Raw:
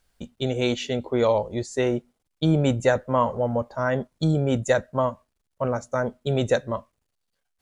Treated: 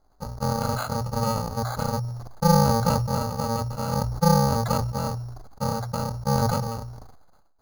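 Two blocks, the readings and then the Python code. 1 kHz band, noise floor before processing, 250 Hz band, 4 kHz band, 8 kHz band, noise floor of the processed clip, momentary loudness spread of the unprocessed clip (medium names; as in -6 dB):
+4.0 dB, -77 dBFS, -0.5 dB, 0.0 dB, +6.5 dB, -59 dBFS, 7 LU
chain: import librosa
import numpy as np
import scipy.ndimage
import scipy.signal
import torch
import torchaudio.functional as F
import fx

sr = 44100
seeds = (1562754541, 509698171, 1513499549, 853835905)

y = fx.bit_reversed(x, sr, seeds[0], block=128)
y = scipy.signal.sosfilt(scipy.signal.butter(4, 1400.0, 'lowpass', fs=sr, output='sos'), y)
y = fx.peak_eq(y, sr, hz=810.0, db=9.5, octaves=1.2)
y = fx.hum_notches(y, sr, base_hz=60, count=2)
y = np.repeat(y[::8], 8)[:len(y)]
y = fx.sustainer(y, sr, db_per_s=41.0)
y = y * 10.0 ** (5.5 / 20.0)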